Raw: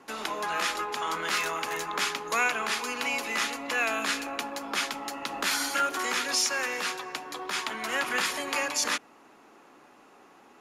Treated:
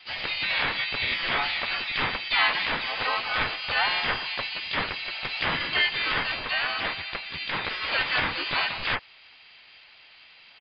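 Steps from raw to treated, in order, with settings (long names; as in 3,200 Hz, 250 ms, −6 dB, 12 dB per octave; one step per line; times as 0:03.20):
voice inversion scrambler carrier 3,500 Hz
pitch-shifted copies added −3 semitones −2 dB, +7 semitones −2 dB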